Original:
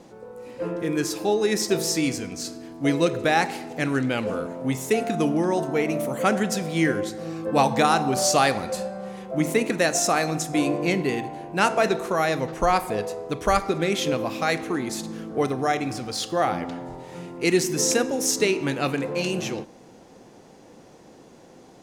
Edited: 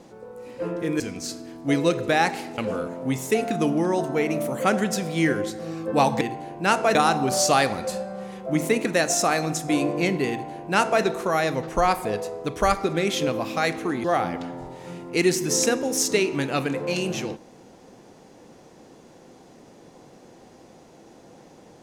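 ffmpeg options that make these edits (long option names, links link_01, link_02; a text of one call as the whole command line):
ffmpeg -i in.wav -filter_complex "[0:a]asplit=6[link_01][link_02][link_03][link_04][link_05][link_06];[link_01]atrim=end=1.002[link_07];[link_02]atrim=start=2.158:end=3.742[link_08];[link_03]atrim=start=4.168:end=7.802[link_09];[link_04]atrim=start=11.138:end=11.882[link_10];[link_05]atrim=start=7.798:end=14.892[link_11];[link_06]atrim=start=16.318[link_12];[link_07][link_08]acrossfade=duration=0.004:curve1=hsin:curve2=hsin[link_13];[link_13][link_09]acrossfade=duration=0.004:curve1=hsin:curve2=hsin[link_14];[link_14][link_10]acrossfade=duration=0.004:curve1=hsin:curve2=hsin[link_15];[link_15][link_11]acrossfade=duration=0.004:curve1=hsin:curve2=hsin[link_16];[link_16][link_12]acrossfade=duration=0.004:curve1=hsin:curve2=hsin" out.wav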